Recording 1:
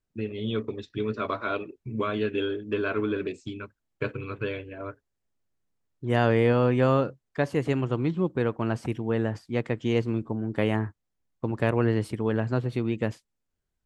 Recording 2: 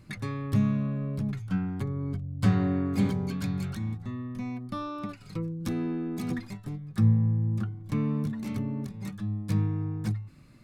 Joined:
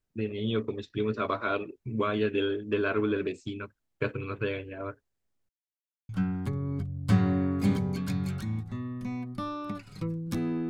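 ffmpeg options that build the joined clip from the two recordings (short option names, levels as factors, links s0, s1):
-filter_complex "[0:a]apad=whole_dur=10.69,atrim=end=10.69,asplit=2[s0][s1];[s0]atrim=end=5.49,asetpts=PTS-STARTPTS,afade=t=out:st=5.486:d=0.004:c=hsin[s2];[s1]atrim=start=5.49:end=6.09,asetpts=PTS-STARTPTS,volume=0[s3];[1:a]atrim=start=1.43:end=6.03,asetpts=PTS-STARTPTS,afade=t=in:d=0.004:c=hsin[s4];[s2][s3][s4]concat=n=3:v=0:a=1"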